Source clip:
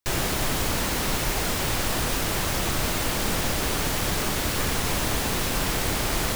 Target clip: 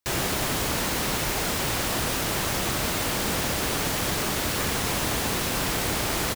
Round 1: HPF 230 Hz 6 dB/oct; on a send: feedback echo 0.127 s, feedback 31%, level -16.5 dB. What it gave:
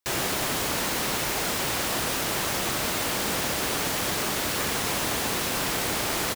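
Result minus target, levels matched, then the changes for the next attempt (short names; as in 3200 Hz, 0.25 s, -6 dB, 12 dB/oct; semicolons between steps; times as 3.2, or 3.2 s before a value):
125 Hz band -5.0 dB
change: HPF 76 Hz 6 dB/oct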